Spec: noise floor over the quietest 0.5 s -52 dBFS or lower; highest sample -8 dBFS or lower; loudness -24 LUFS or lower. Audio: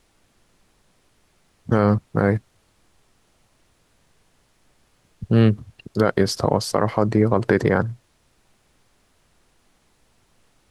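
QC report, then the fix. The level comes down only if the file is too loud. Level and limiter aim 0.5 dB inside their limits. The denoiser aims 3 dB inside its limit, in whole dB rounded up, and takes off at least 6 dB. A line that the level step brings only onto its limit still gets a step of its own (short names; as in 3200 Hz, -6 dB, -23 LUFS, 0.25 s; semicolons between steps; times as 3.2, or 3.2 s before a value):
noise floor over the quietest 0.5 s -62 dBFS: OK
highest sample -4.5 dBFS: fail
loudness -20.5 LUFS: fail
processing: gain -4 dB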